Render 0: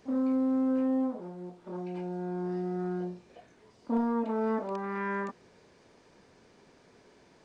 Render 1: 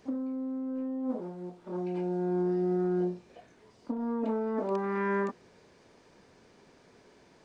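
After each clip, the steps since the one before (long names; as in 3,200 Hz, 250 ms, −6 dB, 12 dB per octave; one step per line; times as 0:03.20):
dynamic equaliser 330 Hz, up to +7 dB, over −41 dBFS, Q 0.96
compressor whose output falls as the input rises −28 dBFS, ratio −1
level −2.5 dB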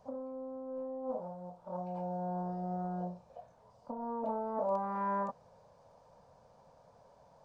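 drawn EQ curve 150 Hz 0 dB, 370 Hz −20 dB, 530 Hz +5 dB, 950 Hz +4 dB, 2,000 Hz −17 dB, 5,300 Hz −9 dB
level −1 dB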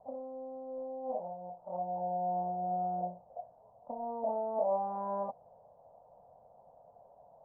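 low-pass with resonance 720 Hz, resonance Q 4.9
level −6 dB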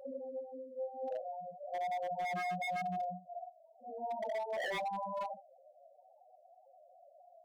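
random phases in long frames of 200 ms
spectral peaks only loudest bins 4
wave folding −33 dBFS
level +1 dB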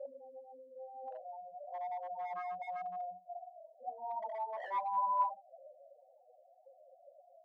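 envelope filter 450–1,000 Hz, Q 7.8, up, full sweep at −41 dBFS
level +11 dB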